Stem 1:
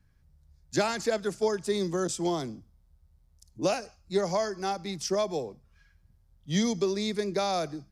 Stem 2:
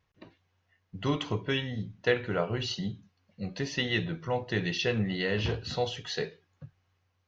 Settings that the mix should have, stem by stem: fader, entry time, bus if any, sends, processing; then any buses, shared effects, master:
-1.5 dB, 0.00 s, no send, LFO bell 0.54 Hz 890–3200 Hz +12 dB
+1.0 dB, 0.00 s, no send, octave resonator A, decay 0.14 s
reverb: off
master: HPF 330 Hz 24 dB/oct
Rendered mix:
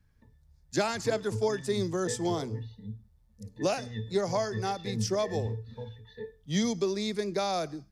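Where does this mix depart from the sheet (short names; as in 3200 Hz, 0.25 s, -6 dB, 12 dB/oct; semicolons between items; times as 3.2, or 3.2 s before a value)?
stem 1: missing LFO bell 0.54 Hz 890–3200 Hz +12 dB; master: missing HPF 330 Hz 24 dB/oct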